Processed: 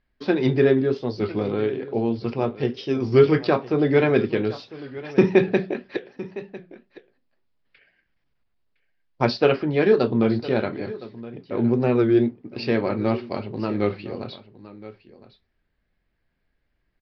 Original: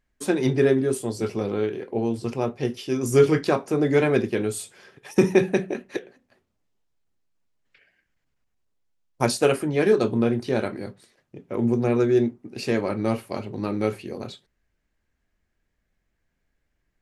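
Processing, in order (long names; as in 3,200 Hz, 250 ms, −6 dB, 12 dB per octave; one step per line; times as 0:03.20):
Butterworth low-pass 5,100 Hz 72 dB per octave
on a send: single-tap delay 1,011 ms −17 dB
on the sum: wow of a warped record 33 1/3 rpm, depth 100 cents
level +1.5 dB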